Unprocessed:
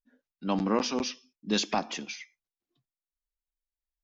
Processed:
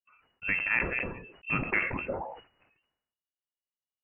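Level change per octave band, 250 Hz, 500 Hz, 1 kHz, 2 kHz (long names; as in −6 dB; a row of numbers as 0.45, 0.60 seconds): −9.0, −5.0, −4.5, +12.0 decibels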